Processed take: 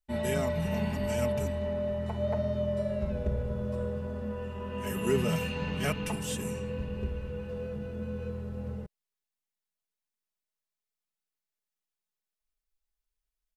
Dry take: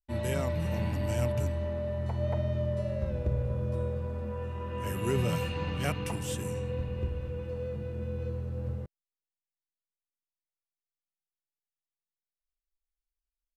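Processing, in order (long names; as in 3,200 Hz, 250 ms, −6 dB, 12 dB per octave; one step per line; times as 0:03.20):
comb filter 4.7 ms, depth 78%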